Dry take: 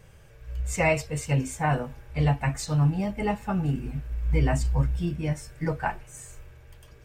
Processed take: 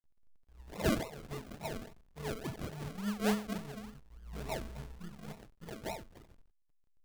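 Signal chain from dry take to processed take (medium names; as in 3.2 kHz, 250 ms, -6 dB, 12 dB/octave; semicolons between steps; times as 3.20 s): inharmonic resonator 210 Hz, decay 0.66 s, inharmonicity 0.008; decimation with a swept rate 39×, swing 60% 3.5 Hz; hysteresis with a dead band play -59 dBFS; trim +7.5 dB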